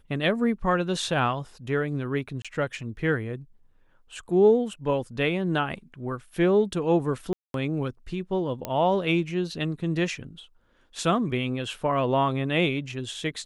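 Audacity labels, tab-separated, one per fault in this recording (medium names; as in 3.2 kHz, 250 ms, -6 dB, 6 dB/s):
2.420000	2.450000	dropout 26 ms
7.330000	7.540000	dropout 212 ms
8.650000	8.650000	pop -14 dBFS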